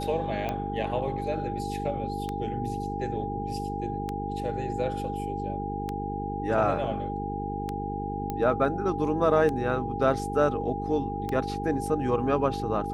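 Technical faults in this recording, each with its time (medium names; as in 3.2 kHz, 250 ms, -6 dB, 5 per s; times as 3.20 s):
buzz 50 Hz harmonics 9 -34 dBFS
tick 33 1/3 rpm -18 dBFS
whine 810 Hz -33 dBFS
8.30 s: pop -18 dBFS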